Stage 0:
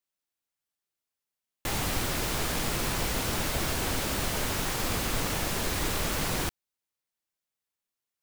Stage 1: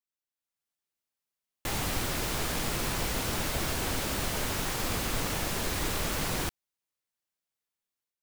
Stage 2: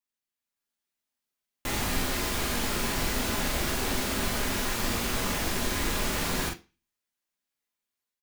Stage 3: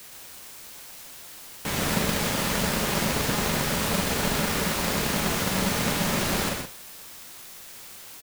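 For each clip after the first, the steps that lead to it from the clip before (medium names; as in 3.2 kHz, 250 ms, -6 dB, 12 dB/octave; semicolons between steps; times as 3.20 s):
level rider gain up to 7.5 dB; trim -9 dB
doubling 43 ms -5 dB; on a send at -4 dB: reverberation RT60 0.30 s, pre-delay 3 ms
in parallel at -7 dB: word length cut 6-bit, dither triangular; on the sum: delay 122 ms -3.5 dB; polarity switched at an audio rate 190 Hz; trim -2 dB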